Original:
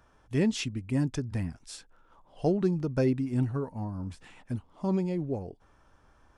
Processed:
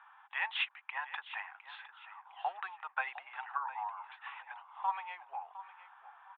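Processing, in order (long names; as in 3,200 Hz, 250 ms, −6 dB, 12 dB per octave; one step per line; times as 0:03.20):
Chebyshev band-pass filter 800–3,700 Hz, order 5
high-frequency loss of the air 470 metres
repeating echo 708 ms, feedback 34%, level −14.5 dB
level +12 dB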